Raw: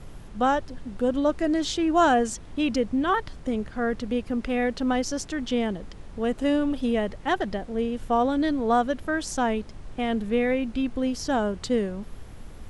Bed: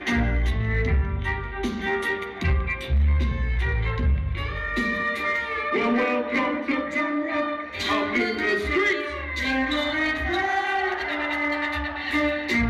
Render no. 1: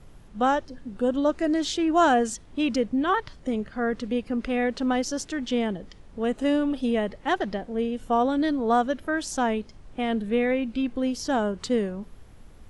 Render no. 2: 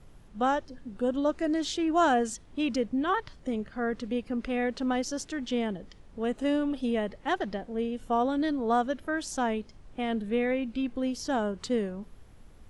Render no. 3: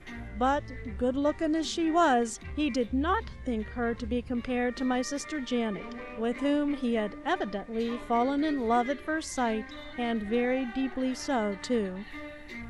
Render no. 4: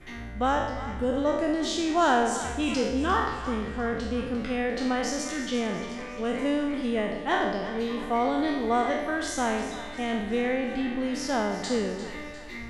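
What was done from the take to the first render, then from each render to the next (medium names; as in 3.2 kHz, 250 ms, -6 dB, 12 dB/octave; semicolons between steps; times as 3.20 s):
noise print and reduce 7 dB
trim -4 dB
add bed -19 dB
spectral sustain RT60 0.90 s; two-band feedback delay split 780 Hz, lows 136 ms, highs 350 ms, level -12 dB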